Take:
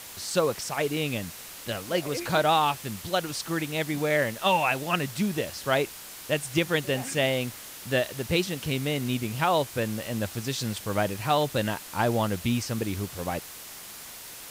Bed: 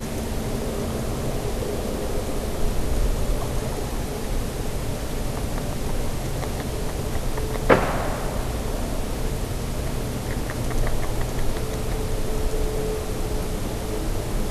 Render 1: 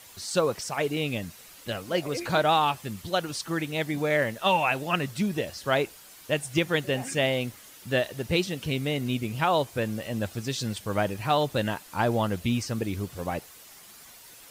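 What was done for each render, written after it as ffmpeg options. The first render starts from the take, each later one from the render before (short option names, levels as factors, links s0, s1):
-af "afftdn=nr=9:nf=-43"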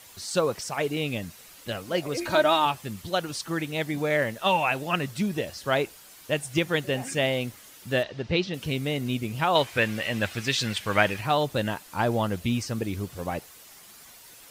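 -filter_complex "[0:a]asettb=1/sr,asplit=3[s0][s1][s2];[s0]atrim=end=2.174[s3];[s1]atrim=start=2.17:end=2.66,asetpts=PTS-STARTPTS,afade=t=in:d=0.004:c=qsin,afade=t=out:st=0.486:d=0.004:c=qsin,aecho=1:1:3.2:0.67,atrim=end_sample=21609[s4];[s2]atrim=start=2.656[s5];[s3][s4]acrossfade=d=0.004:c1=hsin:c2=qsin[s6];[s6][s5]acrossfade=d=0.004:c1=qsin:c2=hsin,asettb=1/sr,asplit=3[s7][s8][s9];[s7]atrim=end=8.034[s10];[s8]atrim=start=8.03:end=8.54,asetpts=PTS-STARTPTS,afade=t=in:d=0.004:c=qsin,afade=t=out:st=0.506:d=0.004:c=qsin,lowpass=f=5100:w=0.5412,lowpass=f=5100:w=1.3066[s11];[s9]atrim=start=8.536[s12];[s10][s11]acrossfade=d=0.004:c1=hsin:c2=qsin[s13];[s13][s12]acrossfade=d=0.004:c1=qsin:c2=hsin,asettb=1/sr,asplit=3[s14][s15][s16];[s14]atrim=end=9.554[s17];[s15]atrim=start=9.55:end=11.21,asetpts=PTS-STARTPTS,afade=t=in:d=0.004:c=qsin,afade=t=out:st=1.656:d=0.004:c=qsin,equalizer=f=2200:w=0.68:g=13[s18];[s16]atrim=start=11.206[s19];[s17][s18]acrossfade=d=0.004:c1=hsin:c2=qsin[s20];[s20][s19]acrossfade=d=0.004:c1=qsin:c2=hsin"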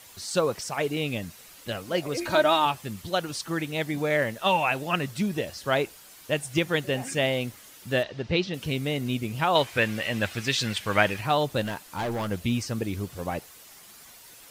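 -filter_complex "[0:a]asettb=1/sr,asplit=3[s0][s1][s2];[s0]atrim=end=11.614[s3];[s1]atrim=start=11.61:end=12.31,asetpts=PTS-STARTPTS,afade=t=in:d=0.004:c=qsin,afade=t=out:st=0.696:d=0.004:c=qsin,volume=21.1,asoftclip=hard,volume=0.0473[s4];[s2]atrim=start=12.306[s5];[s3][s4]acrossfade=d=0.004:c1=hsin:c2=qsin[s6];[s6][s5]acrossfade=d=0.004:c1=qsin:c2=hsin"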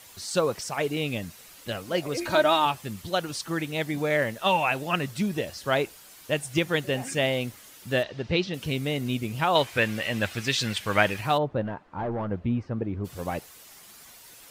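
-filter_complex "[0:a]asplit=3[s0][s1][s2];[s0]afade=t=out:st=11.37:d=0.02[s3];[s1]lowpass=1200,afade=t=in:st=11.37:d=0.02,afade=t=out:st=13.04:d=0.02[s4];[s2]afade=t=in:st=13.04:d=0.02[s5];[s3][s4][s5]amix=inputs=3:normalize=0"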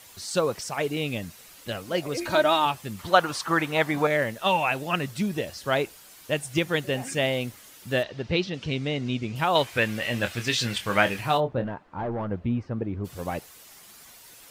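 -filter_complex "[0:a]asettb=1/sr,asplit=3[s0][s1][s2];[s0]atrim=end=2.994[s3];[s1]atrim=start=2.99:end=4.07,asetpts=PTS-STARTPTS,afade=t=in:d=0.004:c=qsin,afade=t=out:st=1.076:d=0.004:c=qsin,equalizer=f=1100:t=o:w=1.8:g=13.5[s4];[s2]atrim=start=4.066[s5];[s3][s4]acrossfade=d=0.004:c1=hsin:c2=qsin[s6];[s6][s5]acrossfade=d=0.004:c1=qsin:c2=hsin,asettb=1/sr,asplit=3[s7][s8][s9];[s7]atrim=end=8.504[s10];[s8]atrim=start=8.5:end=9.36,asetpts=PTS-STARTPTS,afade=t=in:d=0.004:c=qsin,afade=t=out:st=0.856:d=0.004:c=qsin,lowpass=f=6300:w=0.5412,lowpass=f=6300:w=1.3066[s11];[s9]atrim=start=9.356[s12];[s10][s11]acrossfade=d=0.004:c1=hsin:c2=qsin[s13];[s13][s12]acrossfade=d=0.004:c1=qsin:c2=hsin,asettb=1/sr,asplit=3[s14][s15][s16];[s14]atrim=end=9.994[s17];[s15]atrim=start=9.99:end=11.67,asetpts=PTS-STARTPTS,afade=t=in:d=0.004:c=qsin,afade=t=out:st=1.676:d=0.004:c=qsin,asplit=2[s18][s19];[s19]adelay=25,volume=0.398[s20];[s18][s20]amix=inputs=2:normalize=0,atrim=end_sample=74088[s21];[s16]atrim=start=11.666[s22];[s17][s21]acrossfade=d=0.004:c1=hsin:c2=qsin[s23];[s23][s22]acrossfade=d=0.004:c1=qsin:c2=hsin"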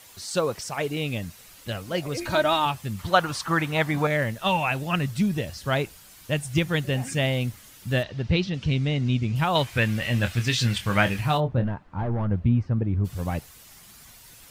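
-af "asubboost=boost=3.5:cutoff=190"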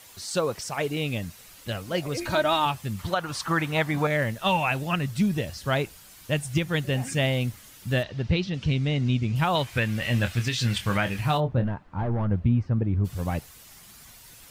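-af "alimiter=limit=0.224:level=0:latency=1:release=267"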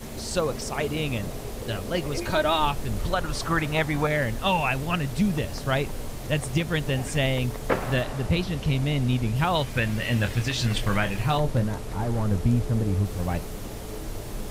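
-filter_complex "[1:a]volume=0.376[s0];[0:a][s0]amix=inputs=2:normalize=0"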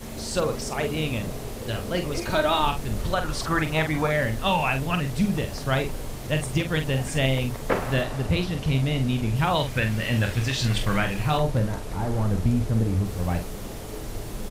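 -filter_complex "[0:a]asplit=2[s0][s1];[s1]adelay=45,volume=0.422[s2];[s0][s2]amix=inputs=2:normalize=0"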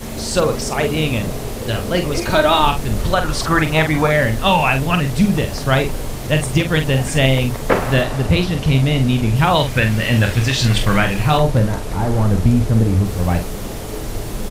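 -af "volume=2.66"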